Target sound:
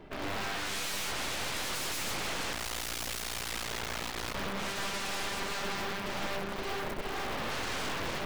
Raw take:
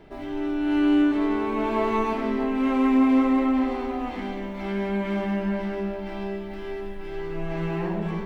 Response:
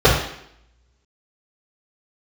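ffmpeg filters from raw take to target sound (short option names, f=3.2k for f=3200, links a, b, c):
-filter_complex "[0:a]aeval=exprs='(mod(25.1*val(0)+1,2)-1)/25.1':c=same,asplit=3[a][b][c];[a]afade=t=out:st=2.52:d=0.02[d];[b]aeval=exprs='val(0)*sin(2*PI*29*n/s)':c=same,afade=t=in:st=2.52:d=0.02,afade=t=out:st=4.33:d=0.02[e];[c]afade=t=in:st=4.33:d=0.02[f];[d][e][f]amix=inputs=3:normalize=0,aeval=exprs='0.0422*(cos(1*acos(clip(val(0)/0.0422,-1,1)))-cos(1*PI/2))+0.0133*(cos(2*acos(clip(val(0)/0.0422,-1,1)))-cos(2*PI/2))+0.0075*(cos(5*acos(clip(val(0)/0.0422,-1,1)))-cos(5*PI/2))+0.00596*(cos(6*acos(clip(val(0)/0.0422,-1,1)))-cos(6*PI/2))+0.0211*(cos(7*acos(clip(val(0)/0.0422,-1,1)))-cos(7*PI/2))':c=same,volume=-4dB"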